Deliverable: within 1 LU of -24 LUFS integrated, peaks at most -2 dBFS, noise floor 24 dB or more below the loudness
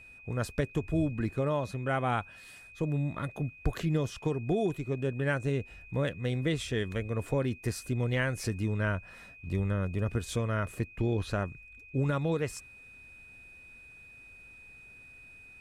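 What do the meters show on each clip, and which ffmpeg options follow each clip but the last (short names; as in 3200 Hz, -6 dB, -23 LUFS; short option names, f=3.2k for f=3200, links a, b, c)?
steady tone 2500 Hz; tone level -50 dBFS; loudness -32.0 LUFS; peak -15.0 dBFS; loudness target -24.0 LUFS
-> -af "bandreject=f=2.5k:w=30"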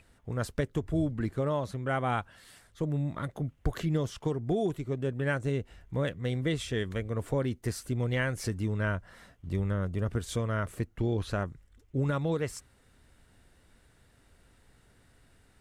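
steady tone none; loudness -32.5 LUFS; peak -15.0 dBFS; loudness target -24.0 LUFS
-> -af "volume=8.5dB"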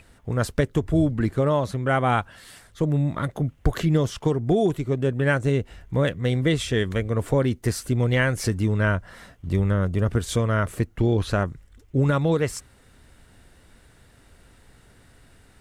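loudness -24.0 LUFS; peak -6.5 dBFS; noise floor -56 dBFS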